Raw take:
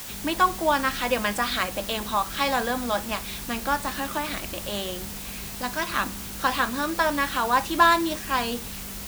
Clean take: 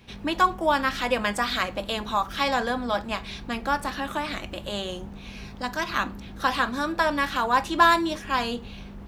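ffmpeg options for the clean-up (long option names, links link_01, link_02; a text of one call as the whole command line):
ffmpeg -i in.wav -af "afwtdn=0.013" out.wav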